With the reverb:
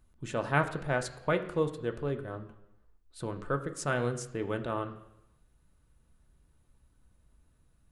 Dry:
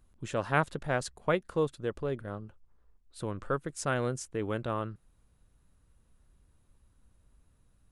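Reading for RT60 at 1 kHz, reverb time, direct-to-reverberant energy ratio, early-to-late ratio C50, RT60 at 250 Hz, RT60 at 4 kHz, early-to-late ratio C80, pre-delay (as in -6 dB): 0.85 s, 0.85 s, 6.0 dB, 12.5 dB, 0.85 s, 0.90 s, 14.0 dB, 3 ms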